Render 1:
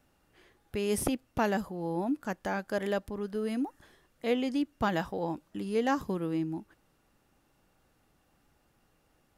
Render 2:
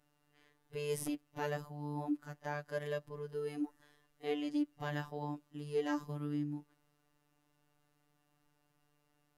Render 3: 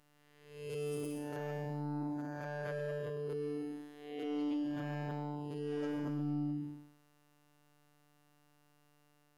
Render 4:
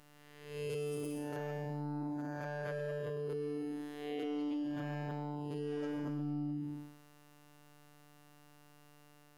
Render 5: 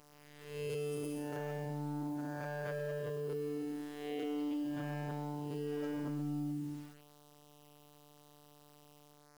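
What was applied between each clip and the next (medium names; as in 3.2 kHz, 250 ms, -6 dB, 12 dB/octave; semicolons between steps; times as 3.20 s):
robot voice 147 Hz; harmonic-percussive split percussive -13 dB; reverse echo 33 ms -19.5 dB; trim -3.5 dB
spectral blur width 359 ms; saturation -36.5 dBFS, distortion -13 dB; trim +6.5 dB
compression, threshold -44 dBFS, peak gain reduction 10 dB; trim +8 dB
word length cut 10-bit, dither none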